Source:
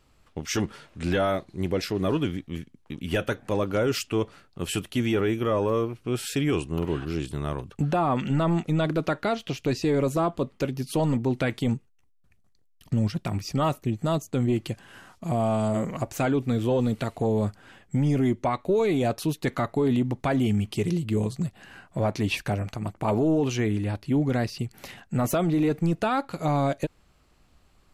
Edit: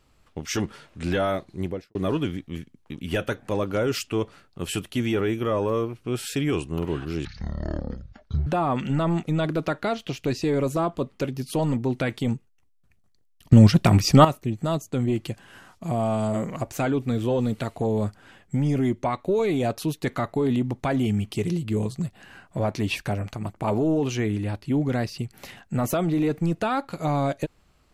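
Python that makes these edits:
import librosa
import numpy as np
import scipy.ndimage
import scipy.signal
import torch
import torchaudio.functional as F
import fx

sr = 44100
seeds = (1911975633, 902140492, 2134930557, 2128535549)

y = fx.studio_fade_out(x, sr, start_s=1.57, length_s=0.38)
y = fx.edit(y, sr, fx.speed_span(start_s=7.25, length_s=0.62, speed=0.51),
    fx.clip_gain(start_s=12.93, length_s=0.72, db=12.0), tone=tone)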